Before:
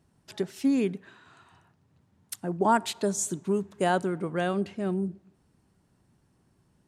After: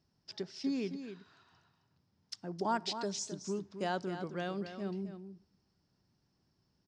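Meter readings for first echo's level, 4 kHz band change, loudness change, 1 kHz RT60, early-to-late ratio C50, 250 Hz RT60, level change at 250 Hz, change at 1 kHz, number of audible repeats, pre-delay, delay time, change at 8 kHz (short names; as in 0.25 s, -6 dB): -9.5 dB, -2.5 dB, -10.0 dB, none, none, none, -10.0 dB, -10.0 dB, 1, none, 0.264 s, -10.5 dB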